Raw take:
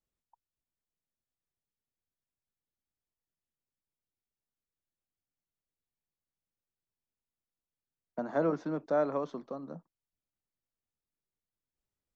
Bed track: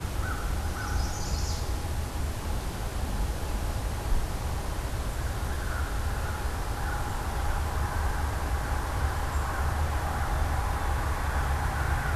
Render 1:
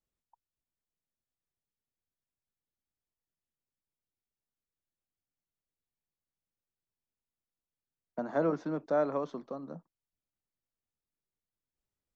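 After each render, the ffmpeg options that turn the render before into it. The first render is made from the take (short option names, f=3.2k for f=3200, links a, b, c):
-af anull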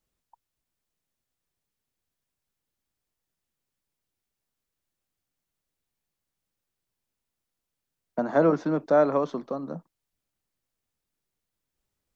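-af "volume=8.5dB"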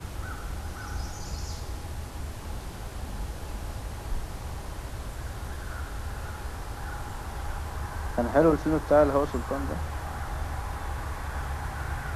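-filter_complex "[1:a]volume=-5dB[a];[0:a][a]amix=inputs=2:normalize=0"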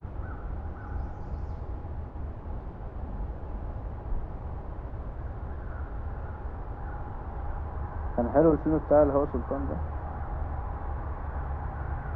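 -af "agate=range=-33dB:threshold=-36dB:ratio=3:detection=peak,lowpass=1k"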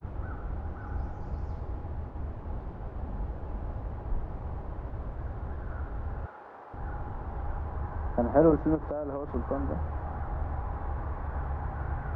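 -filter_complex "[0:a]asettb=1/sr,asplit=3[a][b][c];[a]atrim=end=6.264[d];[b]atrim=start=6.26:end=6.74,asetpts=PTS-STARTPTS,afade=t=in:d=0.004:c=qsin,afade=t=out:st=0.476:d=0.004:c=qsin,highpass=490[e];[c]atrim=start=6.736[f];[d][e]acrossfade=d=0.004:c1=hsin:c2=qsin[g];[g][f]acrossfade=d=0.004:c1=qsin:c2=hsin,asettb=1/sr,asplit=3[h][i][j];[h]atrim=end=8.754[k];[i]atrim=start=8.75:end=9.36,asetpts=PTS-STARTPTS,afade=t=in:d=0.004:c=qsin,afade=t=out:st=0.606:d=0.004:c=qsin,acompressor=threshold=-29dB:ratio=16:attack=3.2:release=140:knee=1:detection=peak[l];[j]atrim=start=9.356[m];[k][l]acrossfade=d=0.004:c1=hsin:c2=qsin[n];[n][m]acrossfade=d=0.004:c1=qsin:c2=hsin"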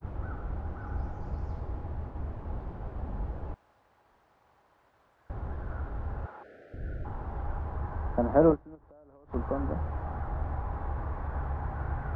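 -filter_complex "[0:a]asettb=1/sr,asplit=3[a][b][c];[a]atrim=end=3.544[d];[b]atrim=start=3.54:end=5.3,asetpts=PTS-STARTPTS,afade=t=in:d=0.004:c=qsin,afade=t=out:st=1.756:d=0.004:c=qsin,aderivative[e];[c]atrim=start=5.296[f];[d][e]acrossfade=d=0.004:c1=hsin:c2=qsin[g];[g][f]acrossfade=d=0.004:c1=qsin:c2=hsin,asettb=1/sr,asplit=3[h][i][j];[h]atrim=end=6.434[k];[i]atrim=start=6.43:end=7.05,asetpts=PTS-STARTPTS,afade=t=in:d=0.004:c=qsin,afade=t=out:st=0.616:d=0.004:c=qsin,asuperstop=centerf=990:order=8:qfactor=1.2[l];[j]atrim=start=7.046[m];[k][l]acrossfade=d=0.004:c1=hsin:c2=qsin[n];[n][m]acrossfade=d=0.004:c1=qsin:c2=hsin,asplit=3[o][p][q];[o]atrim=end=8.76,asetpts=PTS-STARTPTS,afade=t=out:st=8.52:d=0.24:c=exp:silence=0.0794328[r];[p]atrim=start=8.76:end=9.1,asetpts=PTS-STARTPTS,volume=-22dB[s];[q]atrim=start=9.1,asetpts=PTS-STARTPTS,afade=t=in:d=0.24:c=exp:silence=0.0794328[t];[r][s][t]concat=n=3:v=0:a=1"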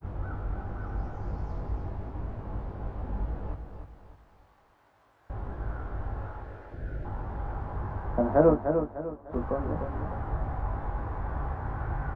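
-filter_complex "[0:a]asplit=2[a][b];[b]adelay=20,volume=-4.5dB[c];[a][c]amix=inputs=2:normalize=0,asplit=2[d][e];[e]aecho=0:1:300|600|900|1200:0.447|0.165|0.0612|0.0226[f];[d][f]amix=inputs=2:normalize=0"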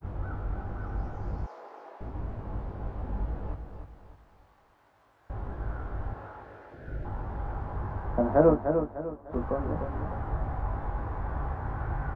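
-filter_complex "[0:a]asettb=1/sr,asplit=3[a][b][c];[a]atrim=end=1.464[d];[b]atrim=start=1.46:end=2.01,asetpts=PTS-STARTPTS,afade=t=in:d=0.004:c=qsin,afade=t=out:st=0.546:d=0.004:c=qsin,highpass=f=450:w=0.5412,highpass=f=450:w=1.3066[e];[c]atrim=start=2.006[f];[d][e]acrossfade=d=0.004:c1=hsin:c2=qsin[g];[g][f]acrossfade=d=0.004:c1=qsin:c2=hsin,asettb=1/sr,asplit=3[h][i][j];[h]atrim=end=6.134[k];[i]atrim=start=6.13:end=6.88,asetpts=PTS-STARTPTS,afade=t=in:d=0.004:c=qsin,afade=t=out:st=0.746:d=0.004:c=qsin,highpass=f=270:p=1[l];[j]atrim=start=6.876[m];[k][l]acrossfade=d=0.004:c1=hsin:c2=qsin[n];[n][m]acrossfade=d=0.004:c1=qsin:c2=hsin"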